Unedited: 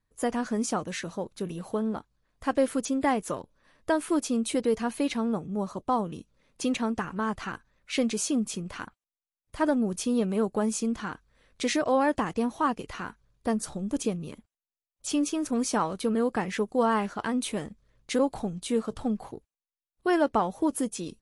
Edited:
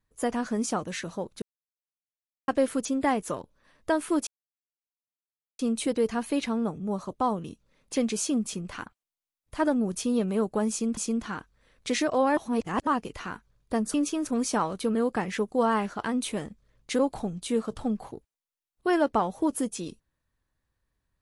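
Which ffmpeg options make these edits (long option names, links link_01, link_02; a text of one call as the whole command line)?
ffmpeg -i in.wav -filter_complex "[0:a]asplit=9[link_01][link_02][link_03][link_04][link_05][link_06][link_07][link_08][link_09];[link_01]atrim=end=1.42,asetpts=PTS-STARTPTS,afade=type=out:start_time=1.416:duration=0.004:curve=hsin[link_10];[link_02]atrim=start=1.42:end=2.48,asetpts=PTS-STARTPTS,volume=0[link_11];[link_03]atrim=start=2.48:end=4.27,asetpts=PTS-STARTPTS,afade=type=in:duration=0.004:curve=hsin,afade=type=out:start_time=1.786:duration=0.004:curve=hsin,apad=pad_dur=1.32[link_12];[link_04]atrim=start=4.27:end=6.642,asetpts=PTS-STARTPTS,afade=type=in:duration=0.004:curve=hsin[link_13];[link_05]atrim=start=7.968:end=10.982[link_14];[link_06]atrim=start=10.708:end=12.112[link_15];[link_07]atrim=start=12.108:end=12.612,asetpts=PTS-STARTPTS,areverse[link_16];[link_08]atrim=start=12.608:end=13.682[link_17];[link_09]atrim=start=15.138[link_18];[link_10][link_11][link_12][link_13]concat=n=4:v=0:a=1[link_19];[link_19][link_14]acrossfade=duration=0.004:curve1=hsin:curve2=hsin[link_20];[link_20][link_15]acrossfade=duration=0.004:curve1=hsin:curve2=hsin[link_21];[link_21][link_16]acrossfade=duration=0.004:curve1=hsin:curve2=hsin[link_22];[link_22][link_17]acrossfade=duration=0.004:curve1=hsin:curve2=hsin[link_23];[link_23][link_18]acrossfade=duration=0.004:curve1=hsin:curve2=hsin" out.wav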